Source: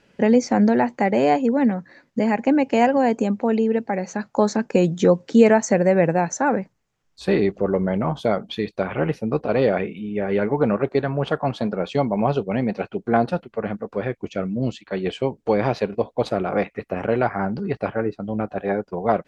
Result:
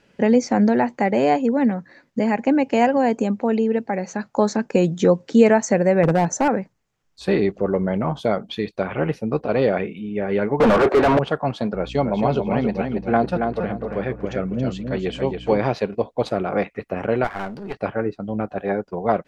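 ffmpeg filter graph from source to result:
-filter_complex "[0:a]asettb=1/sr,asplit=3[s0][s1][s2];[s0]atrim=end=6.034[s3];[s1]atrim=start=6.03:end=6.48,asetpts=PTS-STARTPTS,afade=t=in:d=0.004:c=qsin,afade=t=out:st=0.446:d=0.004:c=qsin,equalizer=f=2700:t=o:w=2.1:g=-9.5,acontrast=46,volume=3.76,asoftclip=hard,volume=0.266[s4];[s2]atrim=start=6.476[s5];[s3][s4]acrossfade=d=0.004:c1=hsin:c2=qsin[s6];[s6][s5]acrossfade=d=0.004:c1=qsin:c2=hsin,asettb=1/sr,asplit=3[s7][s8][s9];[s7]atrim=end=10.604[s10];[s8]atrim=start=10.6:end=11.19,asetpts=PTS-STARTPTS,afade=t=in:d=0.004:c=qsin,afade=t=out:st=0.586:d=0.004:c=qsin,highpass=210,asplit=2[s11][s12];[s12]highpass=f=720:p=1,volume=70.8,asoftclip=type=tanh:threshold=0.473[s13];[s11][s13]amix=inputs=2:normalize=0,lowpass=f=1000:p=1,volume=0.501[s14];[s9]atrim=start=11.186[s15];[s10][s14]acrossfade=d=0.004:c1=hsin:c2=qsin[s16];[s16][s15]acrossfade=d=0.004:c1=qsin:c2=hsin,asettb=1/sr,asplit=3[s17][s18][s19];[s17]atrim=end=11.744[s20];[s18]atrim=start=11.74:end=15.6,asetpts=PTS-STARTPTS,afade=t=in:d=0.004:c=qsin,afade=t=out:st=3.856:d=0.004:c=qsin,aeval=exprs='val(0)+0.0158*(sin(2*PI*60*n/s)+sin(2*PI*2*60*n/s)/2+sin(2*PI*3*60*n/s)/3+sin(2*PI*4*60*n/s)/4+sin(2*PI*5*60*n/s)/5)':c=same,asplit=2[s21][s22];[s22]adelay=277,lowpass=f=4700:p=1,volume=0.562,asplit=2[s23][s24];[s24]adelay=277,lowpass=f=4700:p=1,volume=0.27,asplit=2[s25][s26];[s26]adelay=277,lowpass=f=4700:p=1,volume=0.27,asplit=2[s27][s28];[s28]adelay=277,lowpass=f=4700:p=1,volume=0.27[s29];[s21][s23][s25][s27][s29]amix=inputs=5:normalize=0,atrim=end_sample=170226[s30];[s19]atrim=start=15.596[s31];[s20][s30]acrossfade=d=0.004:c1=hsin:c2=qsin[s32];[s32][s31]acrossfade=d=0.004:c1=qsin:c2=hsin,asettb=1/sr,asplit=3[s33][s34][s35];[s33]atrim=end=17.244[s36];[s34]atrim=start=17.24:end=17.77,asetpts=PTS-STARTPTS,afade=t=in:d=0.004:c=qsin,afade=t=out:st=0.526:d=0.004:c=qsin,equalizer=f=75:w=0.45:g=-12.5,aeval=exprs='clip(val(0),-1,0.0224)':c=same[s37];[s35]atrim=start=17.766[s38];[s36][s37]acrossfade=d=0.004:c1=hsin:c2=qsin[s39];[s39][s38]acrossfade=d=0.004:c1=qsin:c2=hsin"

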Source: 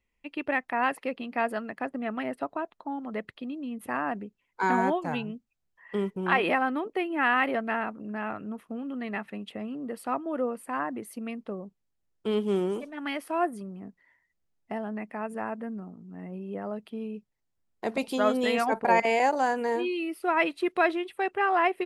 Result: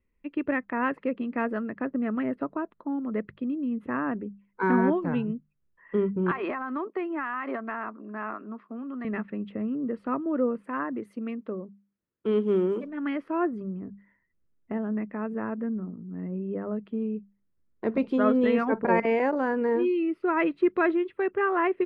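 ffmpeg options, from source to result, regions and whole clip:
-filter_complex "[0:a]asettb=1/sr,asplit=3[s0][s1][s2];[s0]atrim=end=6.314[s3];[s1]atrim=start=6.31:end=9.05,asetpts=PTS-STARTPTS,afade=t=in:d=0.004:c=qsin,afade=t=out:st=2.736:d=0.004:c=qsin,highpass=f=270:w=0.5412,highpass=f=270:w=1.3066,equalizer=f=300:t=q:w=4:g=-6,equalizer=f=490:t=q:w=4:g=-10,equalizer=f=710:t=q:w=4:g=4,equalizer=f=1100:t=q:w=4:g=7,equalizer=f=3000:t=q:w=4:g=-3,equalizer=f=4800:t=q:w=4:g=9,lowpass=f=5700:w=0.5412,lowpass=f=5700:w=1.3066,acompressor=threshold=0.0501:ratio=6:attack=3.2:release=140:knee=1:detection=peak[s4];[s2]atrim=start=9.046[s5];[s3][s4]acrossfade=d=0.004:c1=hsin:c2=qsin[s6];[s6][s5]acrossfade=d=0.004:c1=qsin:c2=hsin,asettb=1/sr,asplit=3[s7][s8][s9];[s7]atrim=end=10.644[s10];[s8]atrim=start=10.64:end=12.84,asetpts=PTS-STARTPTS,afade=t=in:d=0.004:c=qsin,afade=t=out:st=2.196:d=0.004:c=qsin,highpass=f=260:p=1,aemphasis=mode=production:type=50kf[s11];[s9]atrim=start=12.836[s12];[s10][s11]acrossfade=d=0.004:c1=hsin:c2=qsin[s13];[s13][s12]acrossfade=d=0.004:c1=qsin:c2=hsin,lowpass=1200,equalizer=f=760:t=o:w=0.68:g=-15,bandreject=f=50:t=h:w=6,bandreject=f=100:t=h:w=6,bandreject=f=150:t=h:w=6,bandreject=f=200:t=h:w=6,volume=2.24"

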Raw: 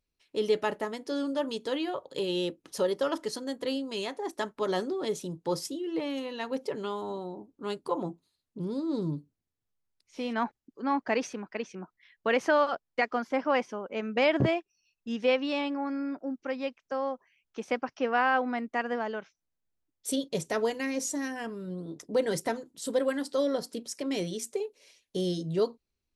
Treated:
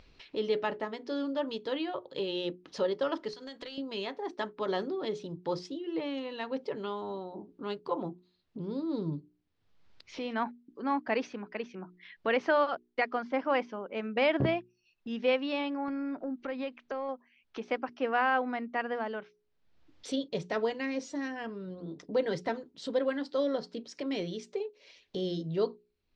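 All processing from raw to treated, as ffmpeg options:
-filter_complex "[0:a]asettb=1/sr,asplit=3[s0][s1][s2];[s0]atrim=end=3.334[s3];[s1]atrim=start=3.33:end=3.78,asetpts=PTS-STARTPTS,afade=t=in:d=0.004:c=qsin,afade=t=out:st=0.446:d=0.004:c=qsin,tiltshelf=f=1200:g=-7.5,acompressor=threshold=0.0126:ratio=12:attack=3.2:release=140:knee=1:detection=peak,aeval=exprs='clip(val(0),-1,0.0141)':c=same[s4];[s2]atrim=start=3.776[s5];[s3][s4]acrossfade=d=0.004:c1=hsin:c2=qsin[s6];[s6][s5]acrossfade=d=0.004:c1=qsin:c2=hsin,asettb=1/sr,asplit=3[s7][s8][s9];[s7]atrim=end=15.884[s10];[s8]atrim=start=15.88:end=17.09,asetpts=PTS-STARTPTS,afade=t=in:d=0.004:c=qsin,afade=t=out:st=1.206:d=0.004:c=qsin,equalizer=f=5400:w=4.8:g=-8,acompressor=threshold=0.00631:ratio=3:attack=3.2:release=140:knee=1:detection=peak,aeval=exprs='0.0708*sin(PI/2*2.24*val(0)/0.0708)':c=same[s11];[s9]atrim=start=17.086[s12];[s10][s11]acrossfade=d=0.004:c1=hsin:c2=qsin[s13];[s13][s12]acrossfade=d=0.004:c1=qsin:c2=hsin,lowpass=f=4600:w=0.5412,lowpass=f=4600:w=1.3066,bandreject=f=60:t=h:w=6,bandreject=f=120:t=h:w=6,bandreject=f=180:t=h:w=6,bandreject=f=240:t=h:w=6,bandreject=f=300:t=h:w=6,bandreject=f=360:t=h:w=6,bandreject=f=420:t=h:w=6,acompressor=mode=upward:threshold=0.0178:ratio=2.5,volume=0.794"

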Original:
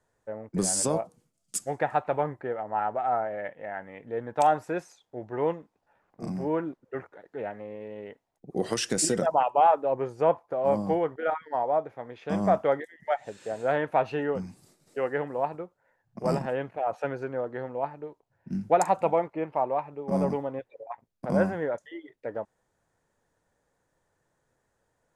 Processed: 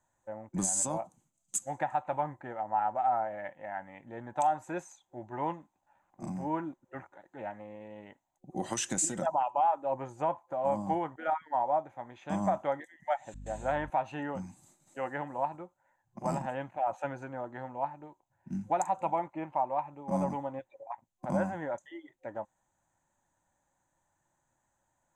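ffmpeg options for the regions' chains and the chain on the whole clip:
-filter_complex "[0:a]asettb=1/sr,asplit=3[s0][s1][s2];[s0]atrim=end=13.344[s3];[s1]atrim=start=13.34:end=13.9,asetpts=PTS-STARTPTS,afade=t=in:d=0.004:c=qsin,afade=t=out:st=0.556:d=0.004:c=qsin,agate=range=0.0224:threshold=0.01:ratio=3:release=100:detection=peak,aeval=exprs='val(0)+0.0112*(sin(2*PI*50*n/s)+sin(2*PI*2*50*n/s)/2+sin(2*PI*3*50*n/s)/3+sin(2*PI*4*50*n/s)/4+sin(2*PI*5*50*n/s)/5)':c=same[s4];[s2]atrim=start=13.896[s5];[s3][s4]acrossfade=d=0.004:c1=hsin:c2=qsin[s6];[s6][s5]acrossfade=d=0.004:c1=qsin:c2=hsin,superequalizer=7b=0.251:9b=2:14b=0.501:15b=2.51,alimiter=limit=0.188:level=0:latency=1:release=239,volume=0.596"

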